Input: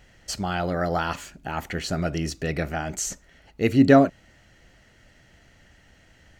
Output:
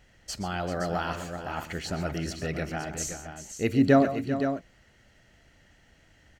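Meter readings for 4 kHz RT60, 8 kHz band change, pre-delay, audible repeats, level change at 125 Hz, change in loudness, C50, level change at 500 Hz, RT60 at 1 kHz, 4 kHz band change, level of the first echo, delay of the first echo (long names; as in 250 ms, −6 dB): no reverb audible, −4.0 dB, no reverb audible, 3, −4.0 dB, −4.5 dB, no reverb audible, −4.0 dB, no reverb audible, −4.0 dB, −14.5 dB, 121 ms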